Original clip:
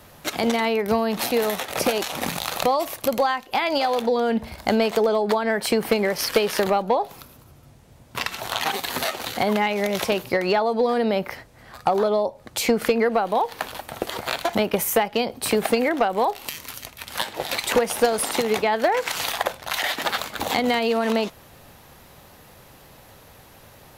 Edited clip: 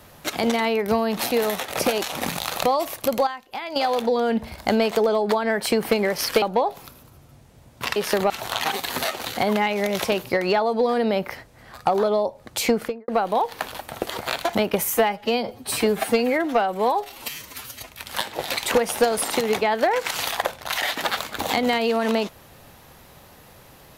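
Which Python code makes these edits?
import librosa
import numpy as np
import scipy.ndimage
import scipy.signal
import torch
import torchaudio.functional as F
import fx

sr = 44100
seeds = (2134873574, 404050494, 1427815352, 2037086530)

y = fx.studio_fade_out(x, sr, start_s=12.68, length_s=0.4)
y = fx.edit(y, sr, fx.clip_gain(start_s=3.27, length_s=0.49, db=-9.0),
    fx.move(start_s=6.42, length_s=0.34, to_s=8.3),
    fx.stretch_span(start_s=14.92, length_s=1.98, factor=1.5), tone=tone)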